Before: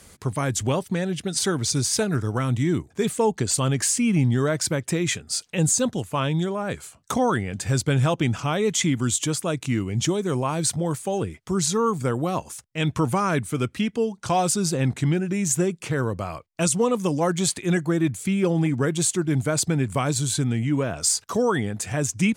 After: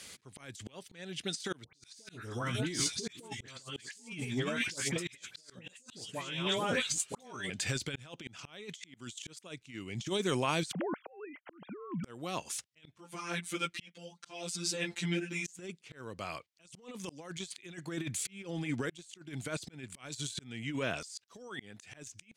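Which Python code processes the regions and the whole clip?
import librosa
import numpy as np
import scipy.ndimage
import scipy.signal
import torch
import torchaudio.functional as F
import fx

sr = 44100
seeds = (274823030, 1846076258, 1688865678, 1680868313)

y = fx.chain(x, sr, fx.reverse_delay(ms=665, wet_db=-8),
    fx.doubler(ms=17.0, db=-7.5),
    fx.dispersion(late='highs', ms=103.0, hz=1400.0), at=(1.64, 7.5))
y = fx.chain(y, sr, fx.sine_speech(),
    fx.lowpass(hz=1700.0, slope=12),
    fx.over_compress(threshold_db=-30.0, ratio=-1.0), at=(10.72, 12.04))
y = fx.chain(y, sr, fx.robotise(hz=172.0),
    fx.ensemble(), at=(12.98, 15.59))
y = fx.weighting(y, sr, curve='D')
y = fx.over_compress(y, sr, threshold_db=-24.0, ratio=-0.5)
y = fx.auto_swell(y, sr, attack_ms=582.0)
y = F.gain(torch.from_numpy(y), -8.5).numpy()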